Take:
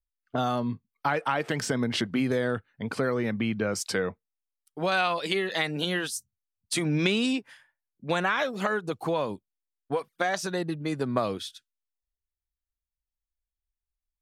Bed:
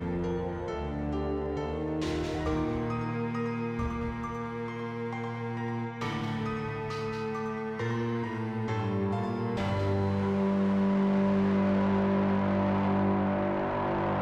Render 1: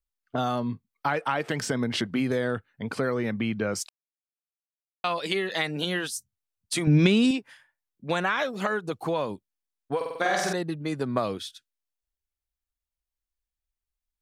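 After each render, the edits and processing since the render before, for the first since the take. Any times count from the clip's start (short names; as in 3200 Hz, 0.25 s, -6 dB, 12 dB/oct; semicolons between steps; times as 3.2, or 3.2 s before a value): 3.89–5.04 mute; 6.87–7.31 low shelf 260 Hz +12 dB; 9.96–10.53 flutter echo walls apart 8.2 m, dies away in 1.1 s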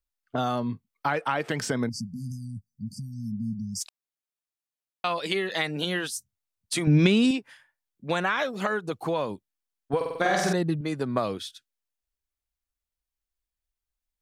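1.89–3.81 brick-wall FIR band-stop 240–4500 Hz; 9.93–10.81 low shelf 230 Hz +11 dB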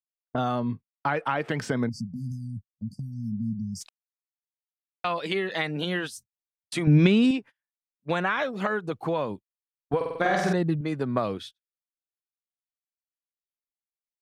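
gate -39 dBFS, range -34 dB; tone controls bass +2 dB, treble -9 dB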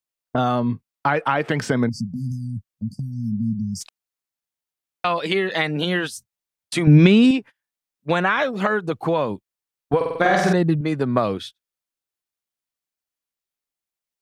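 gain +6.5 dB; limiter -2 dBFS, peak gain reduction 1 dB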